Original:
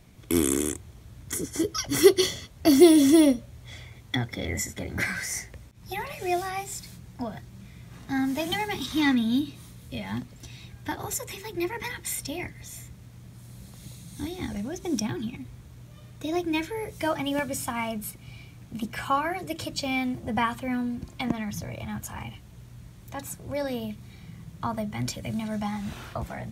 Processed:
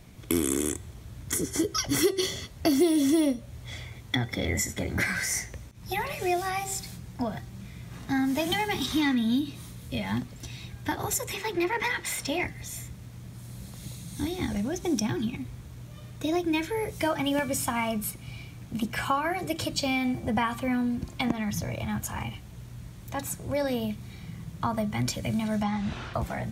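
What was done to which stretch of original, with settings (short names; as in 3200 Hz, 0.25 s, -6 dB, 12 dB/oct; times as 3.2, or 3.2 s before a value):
11.34–12.45 overdrive pedal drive 13 dB, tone 2300 Hz, clips at -17 dBFS
25.63–26.14 LPF 5000 Hz
whole clip: compressor 3:1, threshold -27 dBFS; de-hum 387.5 Hz, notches 26; gain +3.5 dB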